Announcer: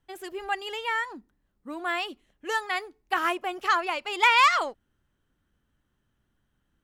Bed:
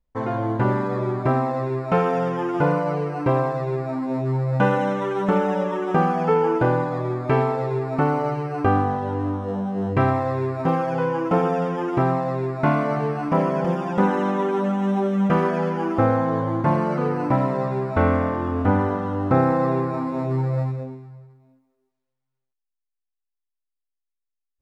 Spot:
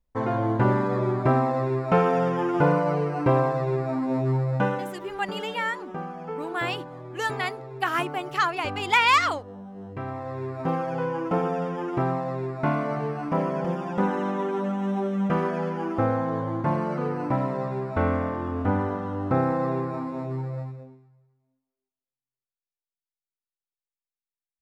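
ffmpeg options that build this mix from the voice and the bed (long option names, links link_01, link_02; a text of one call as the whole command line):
ffmpeg -i stem1.wav -i stem2.wav -filter_complex "[0:a]adelay=4700,volume=0dB[link_01];[1:a]volume=9.5dB,afade=type=out:start_time=4.31:duration=0.63:silence=0.188365,afade=type=in:start_time=10.03:duration=0.69:silence=0.316228,afade=type=out:start_time=19.96:duration=1.2:silence=0.223872[link_02];[link_01][link_02]amix=inputs=2:normalize=0" out.wav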